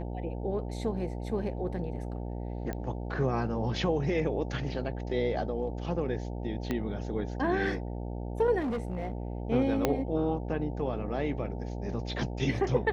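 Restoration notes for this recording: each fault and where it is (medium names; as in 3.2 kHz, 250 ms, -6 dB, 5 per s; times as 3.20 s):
buzz 60 Hz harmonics 15 -36 dBFS
2.73 s: pop -22 dBFS
6.71 s: pop -18 dBFS
8.59–9.13 s: clipped -28.5 dBFS
9.85 s: pop -11 dBFS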